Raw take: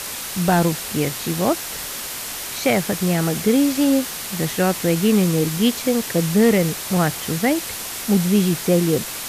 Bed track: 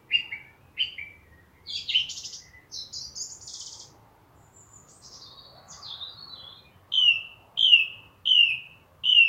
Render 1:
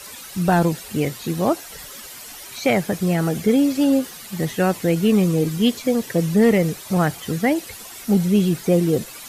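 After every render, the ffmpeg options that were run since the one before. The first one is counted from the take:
-af "afftdn=nr=12:nf=-30"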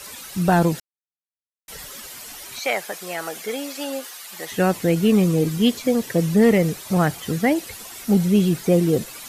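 -filter_complex "[0:a]asettb=1/sr,asplit=3[s0][s1][s2];[s0]atrim=end=2.594[s3];[s1]atrim=start=2.59:end=4.52,asetpts=PTS-STARTPTS,afade=t=in:d=0.004:c=qsin,afade=t=out:st=1.926:d=0.004:c=qsin,highpass=700[s4];[s2]atrim=start=4.516[s5];[s3][s4]acrossfade=d=0.004:c1=hsin:c2=qsin[s6];[s6][s5]acrossfade=d=0.004:c1=qsin:c2=hsin,asplit=3[s7][s8][s9];[s7]atrim=end=0.8,asetpts=PTS-STARTPTS,afade=t=out:st=0.796:d=0.004:c=hsin[s10];[s8]atrim=start=0.8:end=1.68,asetpts=PTS-STARTPTS,volume=0[s11];[s9]atrim=start=1.68,asetpts=PTS-STARTPTS,afade=t=in:d=0.004:c=hsin[s12];[s10][s11][s12]concat=n=3:v=0:a=1"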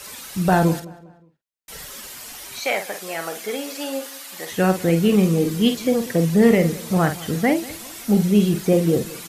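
-filter_complex "[0:a]asplit=2[s0][s1];[s1]adelay=48,volume=0.398[s2];[s0][s2]amix=inputs=2:normalize=0,asplit=2[s3][s4];[s4]adelay=190,lowpass=f=3200:p=1,volume=0.106,asplit=2[s5][s6];[s6]adelay=190,lowpass=f=3200:p=1,volume=0.4,asplit=2[s7][s8];[s8]adelay=190,lowpass=f=3200:p=1,volume=0.4[s9];[s3][s5][s7][s9]amix=inputs=4:normalize=0"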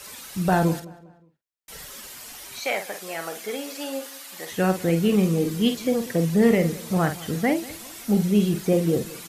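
-af "volume=0.668"

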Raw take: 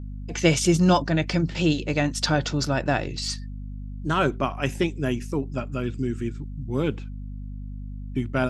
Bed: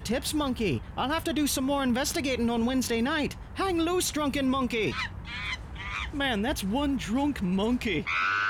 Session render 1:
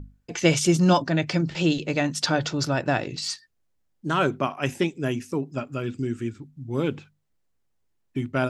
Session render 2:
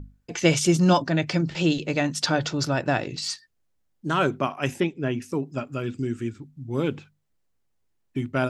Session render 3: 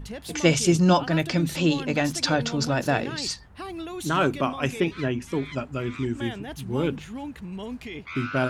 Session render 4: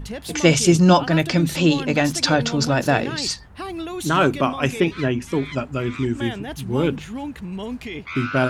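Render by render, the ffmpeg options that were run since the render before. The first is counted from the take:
-af "bandreject=f=50:t=h:w=6,bandreject=f=100:t=h:w=6,bandreject=f=150:t=h:w=6,bandreject=f=200:t=h:w=6,bandreject=f=250:t=h:w=6"
-filter_complex "[0:a]asettb=1/sr,asplit=3[s0][s1][s2];[s0]atrim=end=4.804[s3];[s1]atrim=start=4.8:end=5.22,asetpts=PTS-STARTPTS,afade=t=in:d=0.004:c=qsin,afade=t=out:st=0.416:d=0.004:c=qsin,lowpass=3300[s4];[s2]atrim=start=5.216[s5];[s3][s4]acrossfade=d=0.004:c1=hsin:c2=qsin[s6];[s6][s5]acrossfade=d=0.004:c1=qsin:c2=hsin"
-filter_complex "[1:a]volume=0.376[s0];[0:a][s0]amix=inputs=2:normalize=0"
-af "volume=1.78,alimiter=limit=0.794:level=0:latency=1"

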